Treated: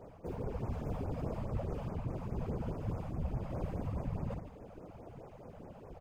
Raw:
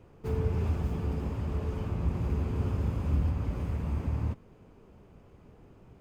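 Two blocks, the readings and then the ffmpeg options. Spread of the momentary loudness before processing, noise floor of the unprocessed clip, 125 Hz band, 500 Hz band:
4 LU, −56 dBFS, −8.5 dB, −2.5 dB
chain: -af "equalizer=frequency=620:width=1.3:gain=11,areverse,acompressor=threshold=-36dB:ratio=8,areverse,aecho=1:1:58.31|151.6:0.501|0.355,afftfilt=real='hypot(re,im)*cos(2*PI*random(0))':imag='hypot(re,im)*sin(2*PI*random(1))':win_size=512:overlap=0.75,afftfilt=real='re*(1-between(b*sr/1024,290*pow(3800/290,0.5+0.5*sin(2*PI*4.8*pts/sr))/1.41,290*pow(3800/290,0.5+0.5*sin(2*PI*4.8*pts/sr))*1.41))':imag='im*(1-between(b*sr/1024,290*pow(3800/290,0.5+0.5*sin(2*PI*4.8*pts/sr))/1.41,290*pow(3800/290,0.5+0.5*sin(2*PI*4.8*pts/sr))*1.41))':win_size=1024:overlap=0.75,volume=7dB"

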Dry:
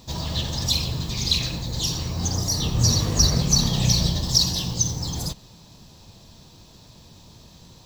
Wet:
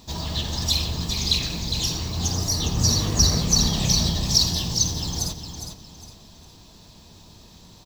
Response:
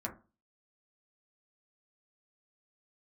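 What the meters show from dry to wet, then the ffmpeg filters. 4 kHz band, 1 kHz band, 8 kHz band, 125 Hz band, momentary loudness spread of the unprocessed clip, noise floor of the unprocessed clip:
+1.0 dB, +0.5 dB, +1.0 dB, −1.5 dB, 9 LU, −50 dBFS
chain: -filter_complex "[0:a]equalizer=frequency=130:width_type=o:width=0.25:gain=-9.5,bandreject=frequency=530:width=12,asplit=2[link_01][link_02];[link_02]aecho=0:1:408|816|1224|1632:0.422|0.135|0.0432|0.0138[link_03];[link_01][link_03]amix=inputs=2:normalize=0"

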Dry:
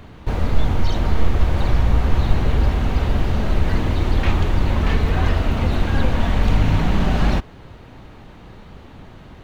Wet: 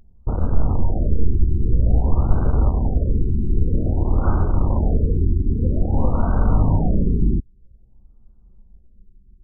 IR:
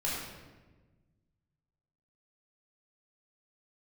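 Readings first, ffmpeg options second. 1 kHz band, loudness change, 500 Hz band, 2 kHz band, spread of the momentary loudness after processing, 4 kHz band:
−5.0 dB, −0.5 dB, −2.0 dB, −17.5 dB, 3 LU, below −40 dB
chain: -af "aemphasis=mode=production:type=75kf,anlmdn=1000,afftfilt=real='re*lt(b*sr/1024,410*pow(1600/410,0.5+0.5*sin(2*PI*0.51*pts/sr)))':imag='im*lt(b*sr/1024,410*pow(1600/410,0.5+0.5*sin(2*PI*0.51*pts/sr)))':win_size=1024:overlap=0.75"

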